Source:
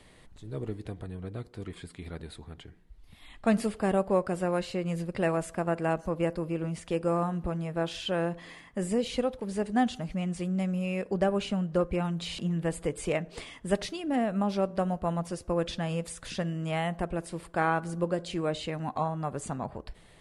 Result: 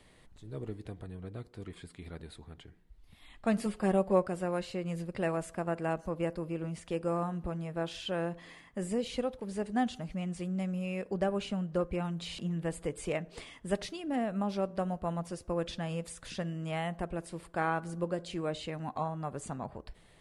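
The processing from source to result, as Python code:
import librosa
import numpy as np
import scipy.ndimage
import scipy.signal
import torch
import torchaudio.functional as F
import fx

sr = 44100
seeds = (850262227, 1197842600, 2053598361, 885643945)

y = fx.comb(x, sr, ms=5.5, depth=0.64, at=(3.65, 4.27))
y = y * 10.0 ** (-4.5 / 20.0)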